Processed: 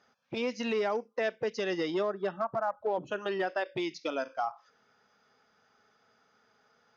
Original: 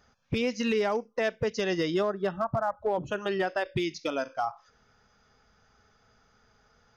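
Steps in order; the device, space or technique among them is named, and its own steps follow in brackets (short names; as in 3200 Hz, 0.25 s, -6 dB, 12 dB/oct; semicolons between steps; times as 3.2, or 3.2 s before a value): public-address speaker with an overloaded transformer (core saturation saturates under 230 Hz; BPF 230–5600 Hz); gain -2 dB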